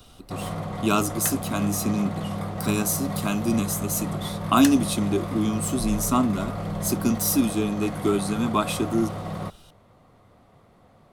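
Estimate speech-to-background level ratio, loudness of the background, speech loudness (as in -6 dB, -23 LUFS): 6.5 dB, -31.5 LUFS, -25.0 LUFS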